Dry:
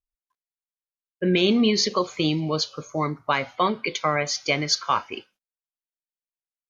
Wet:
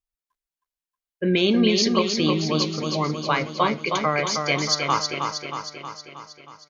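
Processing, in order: feedback echo 0.316 s, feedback 59%, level -5 dB

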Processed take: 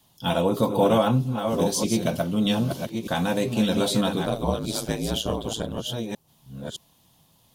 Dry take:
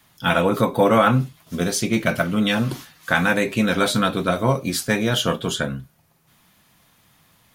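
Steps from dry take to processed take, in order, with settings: reverse delay 0.615 s, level -6 dB; 4.25–5.78 ring modulator 55 Hz; band shelf 1700 Hz -11.5 dB 1.2 oct; gain -3 dB

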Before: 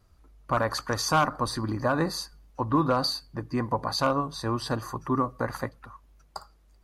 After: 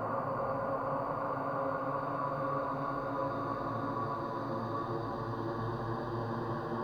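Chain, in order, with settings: compressor 16:1, threshold -32 dBFS, peak gain reduction 15 dB; LFO low-pass saw down 3.7 Hz 530–2000 Hz; requantised 12-bit, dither none; Paulstretch 9.5×, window 1.00 s, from 3.87

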